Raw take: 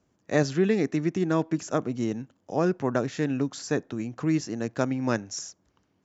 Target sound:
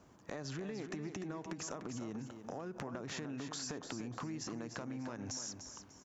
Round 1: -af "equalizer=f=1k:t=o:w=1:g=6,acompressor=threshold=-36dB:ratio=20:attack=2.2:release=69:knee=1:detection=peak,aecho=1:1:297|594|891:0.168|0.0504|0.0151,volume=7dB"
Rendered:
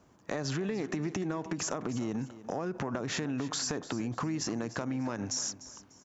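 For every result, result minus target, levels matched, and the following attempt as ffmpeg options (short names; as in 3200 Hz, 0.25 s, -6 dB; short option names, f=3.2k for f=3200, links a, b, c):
compressor: peak gain reduction -9.5 dB; echo-to-direct -7 dB
-af "equalizer=f=1k:t=o:w=1:g=6,acompressor=threshold=-46dB:ratio=20:attack=2.2:release=69:knee=1:detection=peak,aecho=1:1:297|594|891:0.168|0.0504|0.0151,volume=7dB"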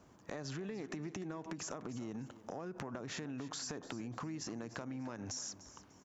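echo-to-direct -7 dB
-af "equalizer=f=1k:t=o:w=1:g=6,acompressor=threshold=-46dB:ratio=20:attack=2.2:release=69:knee=1:detection=peak,aecho=1:1:297|594|891|1188:0.376|0.113|0.0338|0.0101,volume=7dB"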